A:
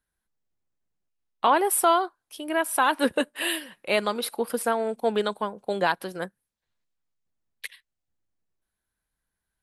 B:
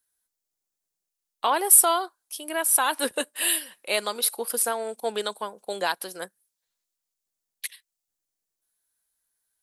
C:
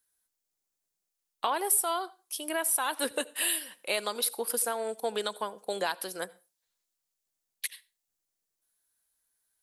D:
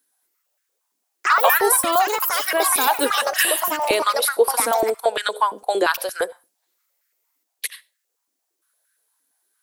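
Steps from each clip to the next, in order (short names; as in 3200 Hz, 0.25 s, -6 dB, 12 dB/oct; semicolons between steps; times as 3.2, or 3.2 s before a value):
tone controls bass -12 dB, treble +14 dB; gain -3 dB
compressor 2.5:1, threshold -28 dBFS, peak gain reduction 12 dB; on a send at -21 dB: reverb RT60 0.30 s, pre-delay 68 ms
echoes that change speed 0.221 s, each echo +5 st, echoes 3; stepped high-pass 8.7 Hz 270–1600 Hz; gain +7 dB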